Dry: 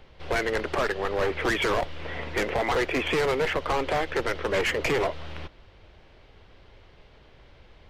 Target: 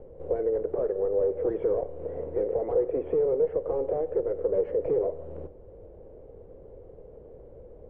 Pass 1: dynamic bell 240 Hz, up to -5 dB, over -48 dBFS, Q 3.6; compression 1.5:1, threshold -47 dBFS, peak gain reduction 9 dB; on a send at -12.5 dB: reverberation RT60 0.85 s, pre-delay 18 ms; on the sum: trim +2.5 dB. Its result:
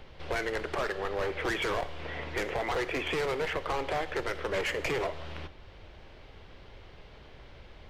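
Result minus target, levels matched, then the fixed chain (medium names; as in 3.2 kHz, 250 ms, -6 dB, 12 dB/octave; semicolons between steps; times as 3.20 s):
500 Hz band -3.5 dB
dynamic bell 240 Hz, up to -5 dB, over -48 dBFS, Q 3.6; resonant low-pass 490 Hz, resonance Q 5.6; compression 1.5:1, threshold -47 dBFS, peak gain reduction 13 dB; on a send at -12.5 dB: reverberation RT60 0.85 s, pre-delay 18 ms; on the sum: trim +2.5 dB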